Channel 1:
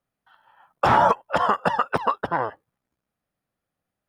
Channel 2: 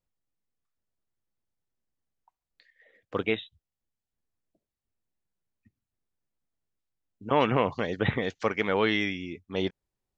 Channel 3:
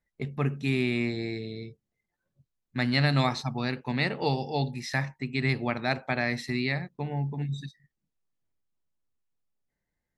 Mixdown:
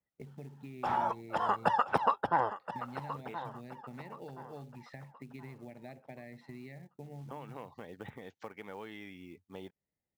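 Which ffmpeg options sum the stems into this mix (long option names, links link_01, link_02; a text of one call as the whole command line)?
ffmpeg -i stem1.wav -i stem2.wav -i stem3.wav -filter_complex "[0:a]volume=-7dB,afade=type=in:start_time=1.19:duration=0.67:silence=0.281838,asplit=2[link_01][link_02];[link_02]volume=-12.5dB[link_03];[1:a]highshelf=frequency=2800:gain=-7,volume=-11.5dB[link_04];[2:a]acompressor=threshold=-39dB:ratio=3,firequalizer=gain_entry='entry(140,0);entry(610,1);entry(1200,-29);entry(1800,-5);entry(6000,-19)':delay=0.05:min_phase=1,volume=-6dB,asplit=2[link_05][link_06];[link_06]apad=whole_len=448931[link_07];[link_04][link_07]sidechaincompress=threshold=-51dB:ratio=8:attack=45:release=117[link_08];[link_08][link_05]amix=inputs=2:normalize=0,acrusher=bits=6:mode=log:mix=0:aa=0.000001,acompressor=threshold=-42dB:ratio=6,volume=0dB[link_09];[link_03]aecho=0:1:1024|2048|3072|4096|5120:1|0.34|0.116|0.0393|0.0134[link_10];[link_01][link_09][link_10]amix=inputs=3:normalize=0,highpass=74,equalizer=frequency=840:width=4.7:gain=7" out.wav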